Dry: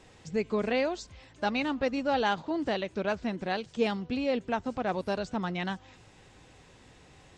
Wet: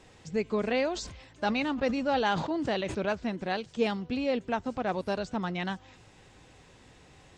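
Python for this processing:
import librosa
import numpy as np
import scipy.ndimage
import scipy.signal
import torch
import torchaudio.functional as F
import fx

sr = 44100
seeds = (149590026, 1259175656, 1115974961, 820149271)

y = fx.sustainer(x, sr, db_per_s=60.0, at=(0.92, 3.13))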